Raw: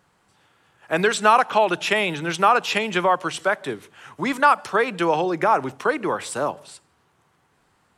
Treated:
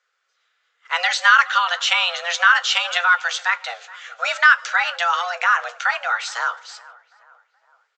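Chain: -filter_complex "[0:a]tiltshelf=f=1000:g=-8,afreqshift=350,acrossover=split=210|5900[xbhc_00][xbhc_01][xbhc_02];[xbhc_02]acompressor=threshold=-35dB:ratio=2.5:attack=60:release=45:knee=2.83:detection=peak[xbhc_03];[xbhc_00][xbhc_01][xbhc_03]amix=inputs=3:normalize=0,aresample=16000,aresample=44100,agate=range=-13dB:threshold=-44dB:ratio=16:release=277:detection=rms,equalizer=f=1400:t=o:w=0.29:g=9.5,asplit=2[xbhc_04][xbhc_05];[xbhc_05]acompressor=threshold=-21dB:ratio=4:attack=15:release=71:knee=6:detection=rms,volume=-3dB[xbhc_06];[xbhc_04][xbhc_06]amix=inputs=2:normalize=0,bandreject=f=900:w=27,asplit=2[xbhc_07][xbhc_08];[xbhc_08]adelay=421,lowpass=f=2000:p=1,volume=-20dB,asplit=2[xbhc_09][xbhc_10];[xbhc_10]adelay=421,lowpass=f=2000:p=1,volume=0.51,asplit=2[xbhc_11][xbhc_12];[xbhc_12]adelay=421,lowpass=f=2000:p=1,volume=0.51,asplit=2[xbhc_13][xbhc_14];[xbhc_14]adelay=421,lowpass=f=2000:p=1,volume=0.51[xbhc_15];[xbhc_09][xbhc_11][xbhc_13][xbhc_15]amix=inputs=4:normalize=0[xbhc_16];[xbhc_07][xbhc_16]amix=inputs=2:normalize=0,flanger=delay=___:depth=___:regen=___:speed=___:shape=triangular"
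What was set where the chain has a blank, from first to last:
7.4, 1, -62, 0.51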